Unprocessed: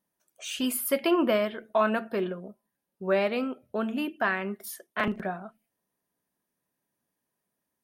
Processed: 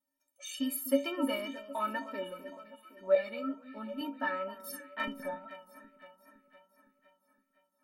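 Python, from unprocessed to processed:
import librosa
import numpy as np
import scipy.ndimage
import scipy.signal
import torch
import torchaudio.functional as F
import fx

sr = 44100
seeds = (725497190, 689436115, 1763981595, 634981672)

y = fx.stiff_resonator(x, sr, f0_hz=270.0, decay_s=0.3, stiffness=0.03)
y = fx.echo_alternate(y, sr, ms=256, hz=1300.0, feedback_pct=71, wet_db=-12.5)
y = fx.wow_flutter(y, sr, seeds[0], rate_hz=2.1, depth_cents=26.0)
y = fx.ensemble(y, sr, at=(3.15, 4.01))
y = F.gain(torch.from_numpy(y), 8.0).numpy()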